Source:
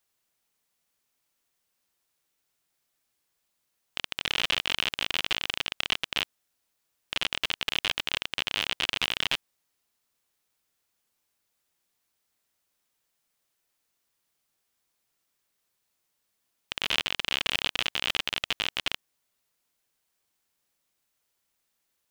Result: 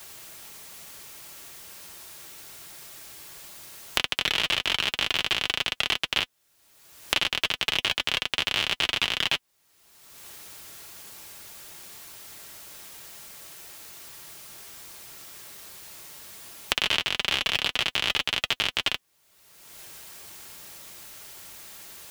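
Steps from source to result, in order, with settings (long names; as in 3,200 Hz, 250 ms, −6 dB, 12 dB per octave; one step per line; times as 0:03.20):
notch comb filter 250 Hz
multiband upward and downward compressor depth 100%
level +4.5 dB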